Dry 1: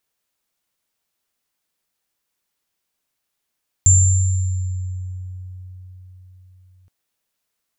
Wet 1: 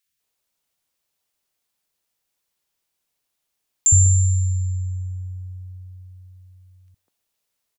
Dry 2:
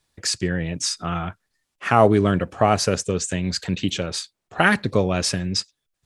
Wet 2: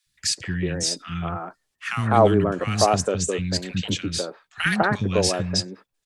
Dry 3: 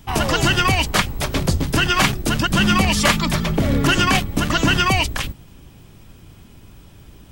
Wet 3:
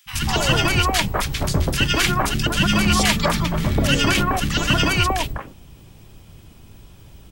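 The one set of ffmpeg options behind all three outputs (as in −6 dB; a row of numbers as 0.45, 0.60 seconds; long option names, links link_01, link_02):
-filter_complex "[0:a]acrossover=split=250|1500[link_01][link_02][link_03];[link_01]adelay=60[link_04];[link_02]adelay=200[link_05];[link_04][link_05][link_03]amix=inputs=3:normalize=0"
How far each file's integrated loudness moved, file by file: −0.5, −1.0, −1.0 LU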